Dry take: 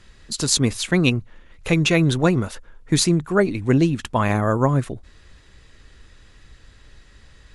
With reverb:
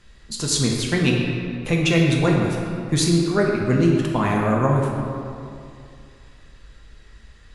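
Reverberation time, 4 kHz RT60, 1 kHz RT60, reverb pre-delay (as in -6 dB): 2.5 s, 1.5 s, 2.5 s, 3 ms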